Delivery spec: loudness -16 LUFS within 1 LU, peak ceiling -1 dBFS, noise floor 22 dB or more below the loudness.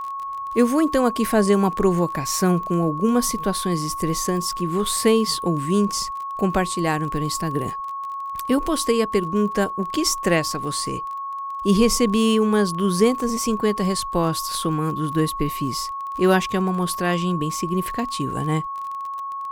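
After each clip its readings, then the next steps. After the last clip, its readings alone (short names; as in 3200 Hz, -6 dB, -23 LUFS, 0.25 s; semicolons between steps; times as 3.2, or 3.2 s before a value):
ticks 25/s; steady tone 1100 Hz; tone level -27 dBFS; loudness -22.0 LUFS; peak -4.5 dBFS; loudness target -16.0 LUFS
-> de-click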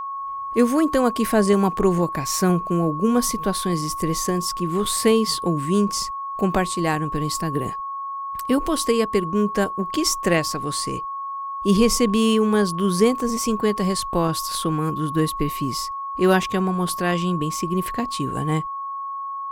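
ticks 0.20/s; steady tone 1100 Hz; tone level -27 dBFS
-> notch 1100 Hz, Q 30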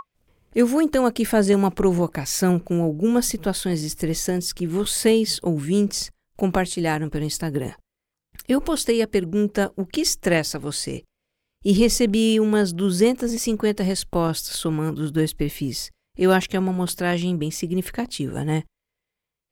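steady tone none; loudness -22.0 LUFS; peak -5.0 dBFS; loudness target -16.0 LUFS
-> gain +6 dB; limiter -1 dBFS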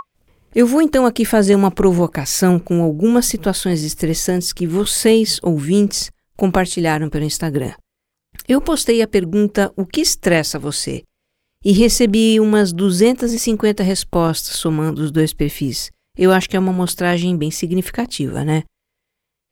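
loudness -16.5 LUFS; peak -1.0 dBFS; noise floor -78 dBFS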